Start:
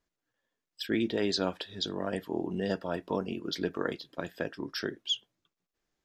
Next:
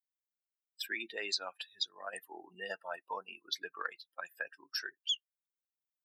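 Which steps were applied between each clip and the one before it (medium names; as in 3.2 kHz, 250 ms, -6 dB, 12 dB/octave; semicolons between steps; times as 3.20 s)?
expander on every frequency bin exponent 2; high-pass 1.2 kHz 12 dB/octave; compression 2.5:1, threshold -44 dBFS, peak gain reduction 11.5 dB; trim +8.5 dB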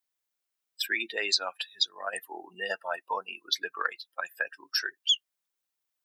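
bass shelf 240 Hz -8 dB; trim +9 dB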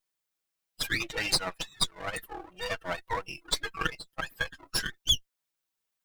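comb filter that takes the minimum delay 6.2 ms; trim +1 dB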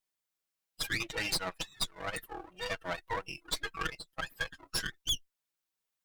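valve stage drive 26 dB, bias 0.6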